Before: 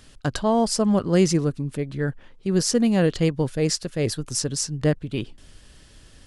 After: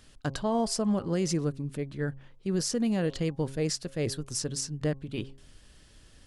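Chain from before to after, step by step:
hum removal 135.2 Hz, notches 8
brickwall limiter −13 dBFS, peak gain reduction 6 dB
level −6 dB

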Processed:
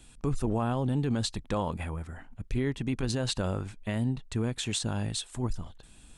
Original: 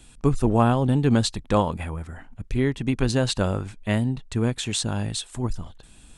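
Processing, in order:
brickwall limiter −15.5 dBFS, peak gain reduction 8.5 dB
level −4 dB

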